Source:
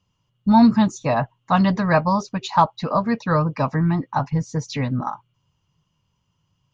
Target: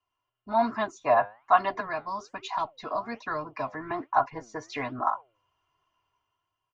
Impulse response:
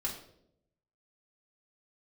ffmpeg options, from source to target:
-filter_complex "[0:a]asettb=1/sr,asplit=3[a][b][c];[a]atrim=end=1.804[d];[b]atrim=start=1.8:end=3.91,asetpts=PTS-STARTPTS,afade=t=in:d=0.004:c=qsin,afade=t=out:st=2.106:d=0.004:c=qsin,acrossover=split=280|3000[e][f][g];[f]acompressor=threshold=-34dB:ratio=4[h];[e][h][g]amix=inputs=3:normalize=0[i];[c]atrim=start=3.906[j];[d][i]acrossfade=d=0.004:c1=hsin:c2=qsin[k];[k][j]acrossfade=d=0.004:c1=qsin:c2=hsin,acrossover=split=490 2300:gain=0.112 1 0.158[l][m][n];[l][m][n]amix=inputs=3:normalize=0,aecho=1:1:2.9:0.8,dynaudnorm=f=100:g=13:m=8.5dB,flanger=delay=2.4:depth=7.5:regen=86:speed=1.2:shape=sinusoidal,volume=-1.5dB"

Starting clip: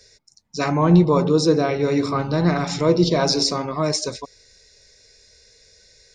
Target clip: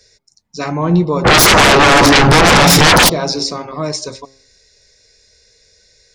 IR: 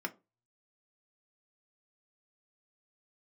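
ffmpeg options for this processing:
-filter_complex "[0:a]asplit=3[a][b][c];[a]afade=t=out:st=1.24:d=0.02[d];[b]aeval=exprs='0.531*sin(PI/2*10*val(0)/0.531)':c=same,afade=t=in:st=1.24:d=0.02,afade=t=out:st=3.08:d=0.02[e];[c]afade=t=in:st=3.08:d=0.02[f];[d][e][f]amix=inputs=3:normalize=0,bandreject=f=134.4:t=h:w=4,bandreject=f=268.8:t=h:w=4,bandreject=f=403.2:t=h:w=4,bandreject=f=537.6:t=h:w=4,bandreject=f=672:t=h:w=4,bandreject=f=806.4:t=h:w=4,bandreject=f=940.8:t=h:w=4,bandreject=f=1.0752k:t=h:w=4,bandreject=f=1.2096k:t=h:w=4,bandreject=f=1.344k:t=h:w=4,volume=1dB"

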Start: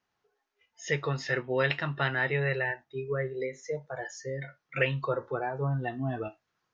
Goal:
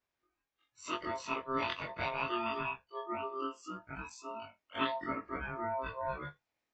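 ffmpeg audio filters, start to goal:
-af "afftfilt=real='re':imag='-im':win_size=2048:overlap=0.75,aeval=exprs='val(0)*sin(2*PI*790*n/s)':c=same"

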